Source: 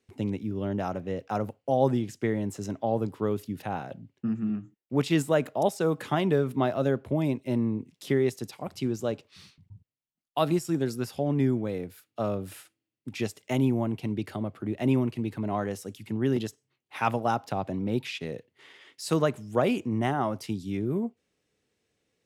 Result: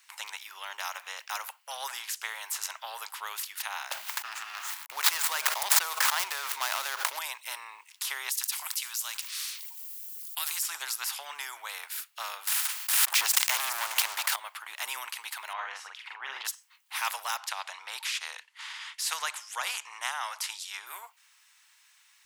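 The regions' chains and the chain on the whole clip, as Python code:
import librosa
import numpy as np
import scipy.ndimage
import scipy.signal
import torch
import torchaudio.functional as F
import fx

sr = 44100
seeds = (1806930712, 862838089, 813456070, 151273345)

y = fx.chain(x, sr, fx.median_filter(points=15),
    fx.env_flatten(amount_pct=100), at=(3.91, 7.19))
y = fx.chain(y, sr, fx.differentiator(),
    fx.env_flatten(amount_pct=50), at=(8.31, 10.63))
y = fx.chain(y, sr, fx.leveller(passes=3),
    fx.echo_single(ms=414, db=-19.0),
    fx.pre_swell(db_per_s=39.0), at=(12.47, 14.36))
y = fx.chain(y, sr, fx.lowpass(hz=1900.0, slope=12),
    fx.doubler(ms=44.0, db=-3), at=(15.53, 16.45))
y = fx.chain(y, sr, fx.lowpass(hz=8800.0, slope=12),
    fx.peak_eq(hz=120.0, db=-6.5, octaves=2.2), at=(17.37, 20.87))
y = scipy.signal.sosfilt(scipy.signal.cheby1(5, 1.0, 920.0, 'highpass', fs=sr, output='sos'), y)
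y = fx.high_shelf(y, sr, hz=11000.0, db=8.5)
y = fx.spectral_comp(y, sr, ratio=2.0)
y = y * librosa.db_to_amplitude(2.5)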